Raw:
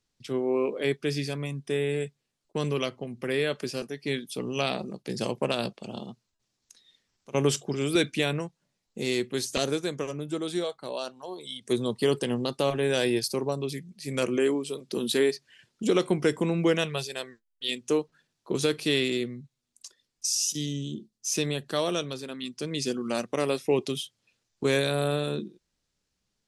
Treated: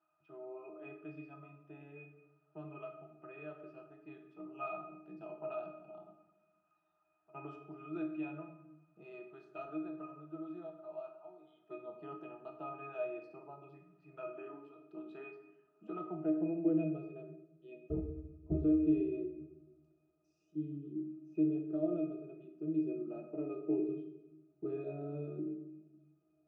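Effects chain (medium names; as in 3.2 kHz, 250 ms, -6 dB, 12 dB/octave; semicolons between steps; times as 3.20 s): in parallel at -4 dB: word length cut 8-bit, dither triangular; on the sum: band-pass sweep 1 kHz -> 400 Hz, 15.87–16.86 s; 17.90–18.55 s: LPC vocoder at 8 kHz whisper; pitch-class resonator D#, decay 0.24 s; simulated room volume 360 m³, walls mixed, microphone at 0.74 m; trim +5.5 dB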